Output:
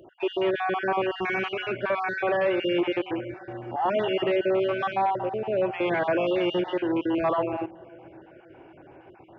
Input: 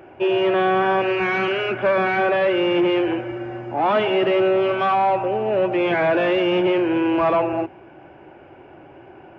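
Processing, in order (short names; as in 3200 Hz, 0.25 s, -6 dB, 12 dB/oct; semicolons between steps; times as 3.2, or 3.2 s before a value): random spectral dropouts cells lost 34%; analogue delay 0.534 s, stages 2048, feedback 59%, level -21.5 dB; gain -5 dB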